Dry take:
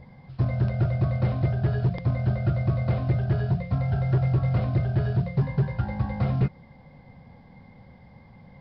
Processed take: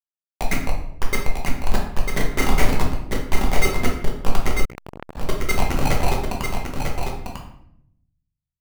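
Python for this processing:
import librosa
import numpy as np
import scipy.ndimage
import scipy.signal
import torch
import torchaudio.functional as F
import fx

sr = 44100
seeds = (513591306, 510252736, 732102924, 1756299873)

p1 = fx.sine_speech(x, sr)
p2 = scipy.signal.sosfilt(scipy.signal.ellip(4, 1.0, 50, 210.0, 'highpass', fs=sr, output='sos'), p1)
p3 = fx.low_shelf_res(p2, sr, hz=530.0, db=-10.0, q=3.0)
p4 = fx.filter_lfo_highpass(p3, sr, shape='square', hz=3.9, low_hz=970.0, high_hz=2100.0, q=3.1)
p5 = fx.sample_hold(p4, sr, seeds[0], rate_hz=1700.0, jitter_pct=0)
p6 = p4 + (p5 * 10.0 ** (-10.0 / 20.0))
p7 = fx.schmitt(p6, sr, flips_db=-14.0)
p8 = fx.doubler(p7, sr, ms=34.0, db=-6, at=(2.06, 2.71))
p9 = p8 + fx.echo_single(p8, sr, ms=947, db=-5.5, dry=0)
p10 = fx.room_shoebox(p9, sr, seeds[1], volume_m3=150.0, walls='mixed', distance_m=1.1)
p11 = fx.transformer_sat(p10, sr, knee_hz=3100.0, at=(4.65, 5.17))
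y = p11 * 10.0 ** (2.0 / 20.0)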